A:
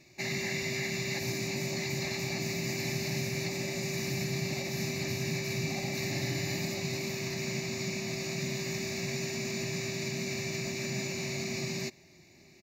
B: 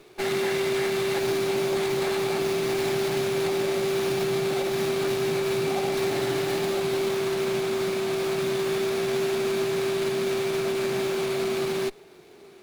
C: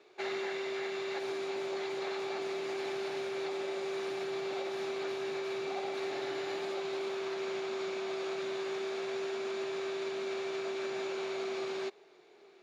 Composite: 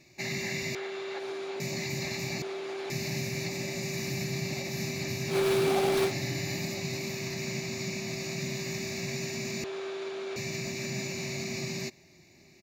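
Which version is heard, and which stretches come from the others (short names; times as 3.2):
A
0.75–1.6 from C
2.42–2.9 from C
5.32–6.09 from B, crossfade 0.10 s
9.64–10.36 from C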